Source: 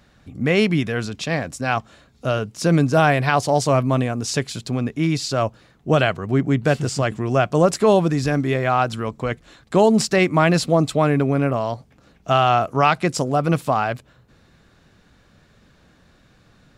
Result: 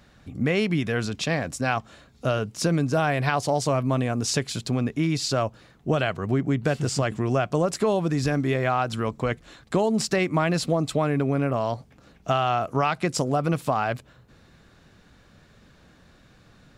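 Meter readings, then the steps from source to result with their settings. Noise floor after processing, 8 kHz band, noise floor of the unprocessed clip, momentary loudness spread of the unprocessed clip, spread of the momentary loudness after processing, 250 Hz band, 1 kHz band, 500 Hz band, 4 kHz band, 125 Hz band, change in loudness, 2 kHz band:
-56 dBFS, -2.5 dB, -56 dBFS, 10 LU, 5 LU, -5.0 dB, -6.0 dB, -5.5 dB, -3.5 dB, -4.5 dB, -5.0 dB, -5.5 dB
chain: compressor 4:1, threshold -20 dBFS, peak gain reduction 9 dB

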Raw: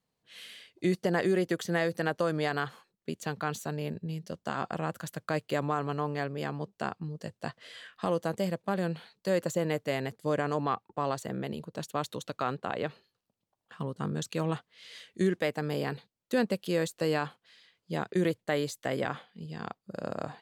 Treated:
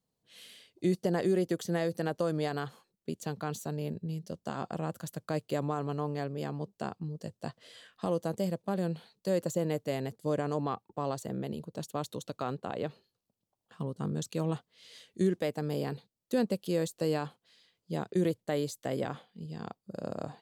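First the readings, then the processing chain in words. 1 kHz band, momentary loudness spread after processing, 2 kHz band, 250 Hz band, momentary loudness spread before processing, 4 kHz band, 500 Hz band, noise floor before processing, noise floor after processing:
-4.5 dB, 12 LU, -8.5 dB, -0.5 dB, 12 LU, -4.0 dB, -1.5 dB, -85 dBFS, under -85 dBFS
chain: bell 1800 Hz -9 dB 1.9 oct

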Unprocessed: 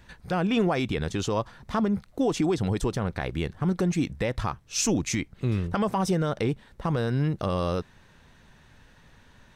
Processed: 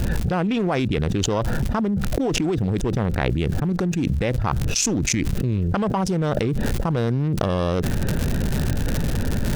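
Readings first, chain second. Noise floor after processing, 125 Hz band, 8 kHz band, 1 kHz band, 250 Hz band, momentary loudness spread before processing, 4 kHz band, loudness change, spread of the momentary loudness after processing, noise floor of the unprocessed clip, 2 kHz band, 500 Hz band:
-25 dBFS, +7.5 dB, +6.5 dB, +3.5 dB, +4.5 dB, 6 LU, +5.5 dB, +4.5 dB, 2 LU, -57 dBFS, +5.0 dB, +4.0 dB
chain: Wiener smoothing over 41 samples; crackle 180/s -52 dBFS; fast leveller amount 100%

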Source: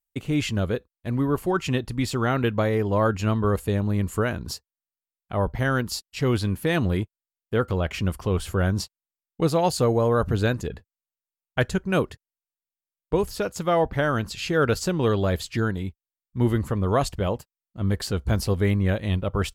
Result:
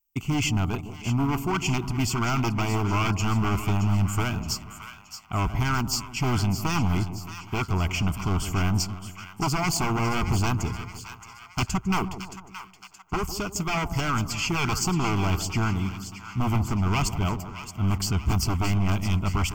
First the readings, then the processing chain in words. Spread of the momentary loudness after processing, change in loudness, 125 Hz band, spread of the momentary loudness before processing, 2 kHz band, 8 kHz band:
11 LU, -1.5 dB, +0.5 dB, 8 LU, -0.5 dB, +5.5 dB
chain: high shelf 9700 Hz +11 dB; wavefolder -19.5 dBFS; fixed phaser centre 2600 Hz, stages 8; split-band echo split 950 Hz, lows 0.156 s, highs 0.622 s, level -10.5 dB; gain +4 dB

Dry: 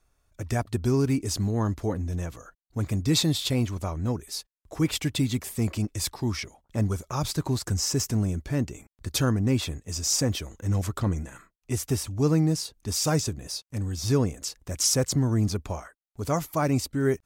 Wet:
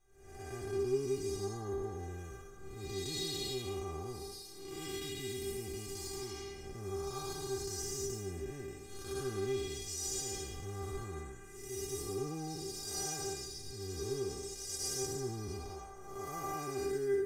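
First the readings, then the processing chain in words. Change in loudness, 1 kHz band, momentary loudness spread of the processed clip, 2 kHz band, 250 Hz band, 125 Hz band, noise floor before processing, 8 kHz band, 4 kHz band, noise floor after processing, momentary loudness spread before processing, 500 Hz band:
-12.5 dB, -9.0 dB, 10 LU, -11.0 dB, -17.0 dB, -19.0 dB, -76 dBFS, -10.0 dB, -11.5 dB, -50 dBFS, 11 LU, -6.0 dB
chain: time blur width 0.37 s; in parallel at 0 dB: limiter -25.5 dBFS, peak gain reduction 9.5 dB; on the sum: metallic resonator 390 Hz, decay 0.2 s, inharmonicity 0.002; gain +5 dB

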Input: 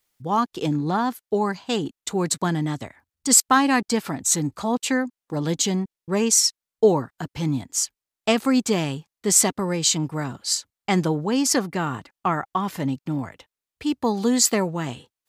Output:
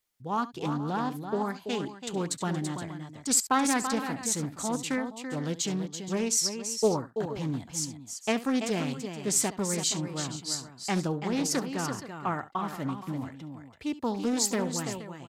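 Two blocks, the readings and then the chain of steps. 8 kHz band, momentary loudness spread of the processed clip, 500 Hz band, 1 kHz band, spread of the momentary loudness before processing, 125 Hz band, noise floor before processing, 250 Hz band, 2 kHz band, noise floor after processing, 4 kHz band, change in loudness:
-8.0 dB, 9 LU, -7.5 dB, -7.0 dB, 11 LU, -7.0 dB, under -85 dBFS, -7.0 dB, -7.5 dB, -51 dBFS, -7.5 dB, -7.5 dB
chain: on a send: tapped delay 69/334/471 ms -16.5/-8/-14.5 dB; on the sum: Doppler distortion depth 0.28 ms; gain -8 dB

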